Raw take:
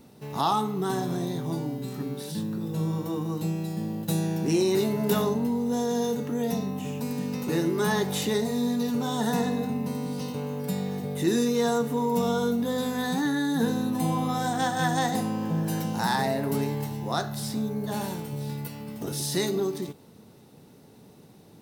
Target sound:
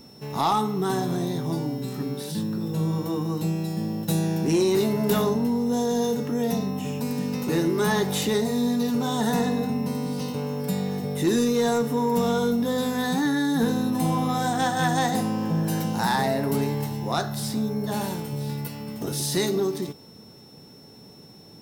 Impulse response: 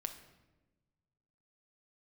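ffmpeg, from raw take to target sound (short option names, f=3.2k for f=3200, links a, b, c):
-af "aeval=exprs='0.299*(cos(1*acos(clip(val(0)/0.299,-1,1)))-cos(1*PI/2))+0.0376*(cos(5*acos(clip(val(0)/0.299,-1,1)))-cos(5*PI/2))+0.00841*(cos(7*acos(clip(val(0)/0.299,-1,1)))-cos(7*PI/2))':c=same,aeval=exprs='val(0)+0.00282*sin(2*PI*5400*n/s)':c=same"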